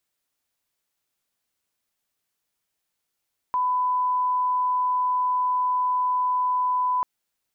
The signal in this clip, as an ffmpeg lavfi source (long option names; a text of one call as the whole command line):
ffmpeg -f lavfi -i "sine=frequency=1000:duration=3.49:sample_rate=44100,volume=-1.94dB" out.wav